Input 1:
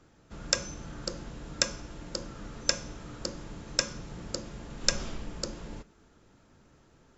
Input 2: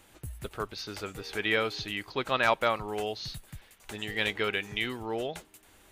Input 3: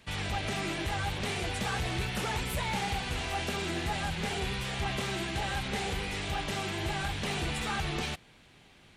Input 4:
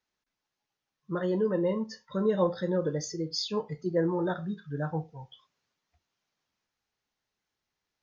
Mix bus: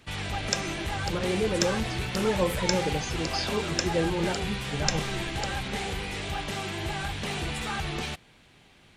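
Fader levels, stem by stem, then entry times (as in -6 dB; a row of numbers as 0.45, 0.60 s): -2.0, -15.0, +1.0, -0.5 dB; 0.00, 1.00, 0.00, 0.00 s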